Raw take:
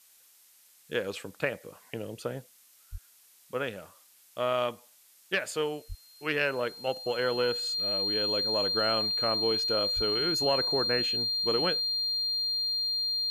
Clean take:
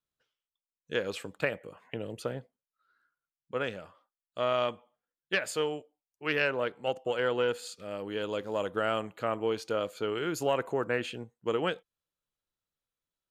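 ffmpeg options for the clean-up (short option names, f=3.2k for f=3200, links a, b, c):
-filter_complex "[0:a]bandreject=f=4.2k:w=30,asplit=3[a][b][c];[a]afade=t=out:st=2.91:d=0.02[d];[b]highpass=f=140:w=0.5412,highpass=f=140:w=1.3066,afade=t=in:st=2.91:d=0.02,afade=t=out:st=3.03:d=0.02[e];[c]afade=t=in:st=3.03:d=0.02[f];[d][e][f]amix=inputs=3:normalize=0,asplit=3[g][h][i];[g]afade=t=out:st=5.88:d=0.02[j];[h]highpass=f=140:w=0.5412,highpass=f=140:w=1.3066,afade=t=in:st=5.88:d=0.02,afade=t=out:st=6:d=0.02[k];[i]afade=t=in:st=6:d=0.02[l];[j][k][l]amix=inputs=3:normalize=0,asplit=3[m][n][o];[m]afade=t=out:st=9.95:d=0.02[p];[n]highpass=f=140:w=0.5412,highpass=f=140:w=1.3066,afade=t=in:st=9.95:d=0.02,afade=t=out:st=10.07:d=0.02[q];[o]afade=t=in:st=10.07:d=0.02[r];[p][q][r]amix=inputs=3:normalize=0,afftdn=nr=30:nf=-60"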